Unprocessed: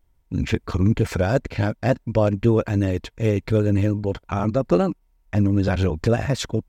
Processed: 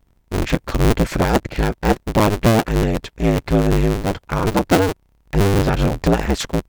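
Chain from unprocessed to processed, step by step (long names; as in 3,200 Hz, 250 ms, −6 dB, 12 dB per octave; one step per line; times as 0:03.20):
sub-harmonics by changed cycles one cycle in 2, inverted
level +3.5 dB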